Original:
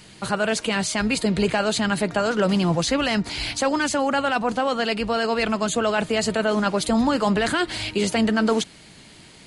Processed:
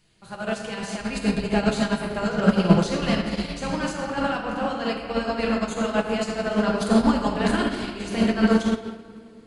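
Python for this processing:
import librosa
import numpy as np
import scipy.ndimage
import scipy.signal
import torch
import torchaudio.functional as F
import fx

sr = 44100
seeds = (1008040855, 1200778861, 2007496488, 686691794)

y = fx.low_shelf(x, sr, hz=73.0, db=9.5)
y = fx.room_shoebox(y, sr, seeds[0], volume_m3=220.0, walls='hard', distance_m=0.7)
y = fx.upward_expand(y, sr, threshold_db=-23.0, expansion=2.5)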